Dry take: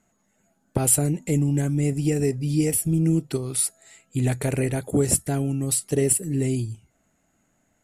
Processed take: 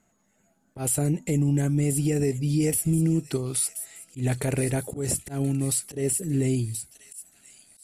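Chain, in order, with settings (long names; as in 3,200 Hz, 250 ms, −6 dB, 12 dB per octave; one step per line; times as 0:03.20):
delay with a high-pass on its return 1,028 ms, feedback 40%, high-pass 3,200 Hz, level −10.5 dB
brickwall limiter −15 dBFS, peak gain reduction 8.5 dB
volume swells 135 ms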